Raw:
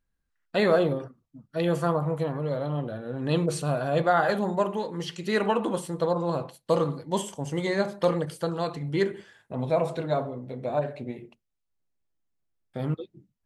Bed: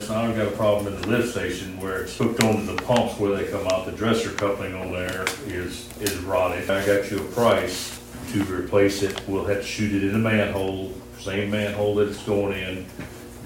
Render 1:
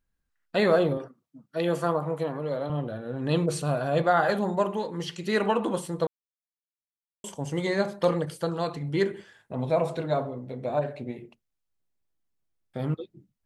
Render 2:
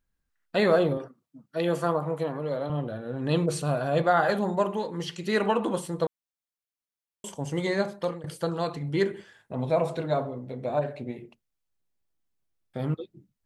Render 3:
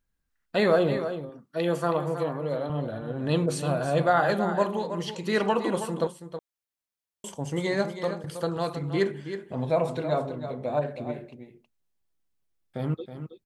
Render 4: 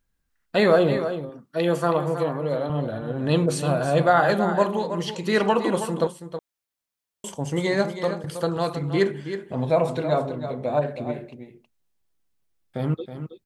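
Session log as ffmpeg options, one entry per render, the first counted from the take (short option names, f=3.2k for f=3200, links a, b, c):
-filter_complex "[0:a]asettb=1/sr,asplit=3[a][b][c];[a]atrim=end=0.974[d];[b]atrim=start=0.97:end=2.7,asetpts=PTS-STARTPTS,afade=t=in:d=0.004:c=qsin,afade=t=out:st=1.726:d=0.004:c=qsin,highpass=190[e];[c]atrim=start=2.696[f];[d][e]acrossfade=d=0.004:c1=hsin:c2=qsin[g];[g][f]acrossfade=d=0.004:c1=qsin:c2=hsin,asplit=3[h][i][j];[h]atrim=end=6.07,asetpts=PTS-STARTPTS,afade=t=out:st=6.066:d=0.004:c=hsin[k];[i]atrim=start=6.07:end=7.24,asetpts=PTS-STARTPTS,volume=0[l];[j]atrim=start=7.24,asetpts=PTS-STARTPTS,afade=t=in:d=0.004:c=hsin[m];[k][l][m]concat=n=3:v=0:a=1"
-filter_complex "[0:a]asplit=2[a][b];[a]atrim=end=8.24,asetpts=PTS-STARTPTS,afade=t=out:st=7.63:d=0.61:c=qsin:silence=0.112202[c];[b]atrim=start=8.24,asetpts=PTS-STARTPTS,afade=t=in:d=0.004:c=hsin:silence=0.112202[d];[c][d]concat=n=2:v=0:a=1"
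-af "aecho=1:1:321:0.316"
-af "volume=4dB"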